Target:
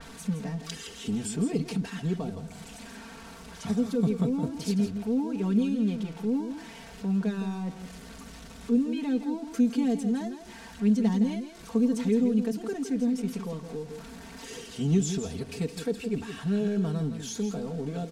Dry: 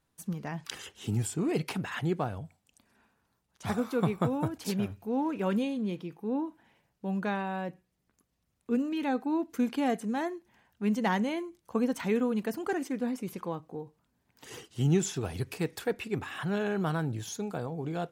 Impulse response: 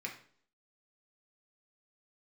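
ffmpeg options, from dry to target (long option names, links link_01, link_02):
-filter_complex "[0:a]aeval=exprs='val(0)+0.5*0.00944*sgn(val(0))':channel_layout=same,aeval=exprs='val(0)+0.00178*sin(2*PI*1500*n/s)':channel_layout=same,aecho=1:1:4.4:0.91,acrossover=split=450|3900[link_01][link_02][link_03];[link_02]acompressor=threshold=-46dB:ratio=5[link_04];[link_01][link_04][link_03]amix=inputs=3:normalize=0,lowpass=8900,asplit=2[link_05][link_06];[link_06]aecho=0:1:165:0.335[link_07];[link_05][link_07]amix=inputs=2:normalize=0,adynamicequalizer=threshold=0.00251:dfrequency=5200:dqfactor=0.7:tfrequency=5200:tqfactor=0.7:attack=5:release=100:ratio=0.375:range=1.5:mode=cutabove:tftype=highshelf"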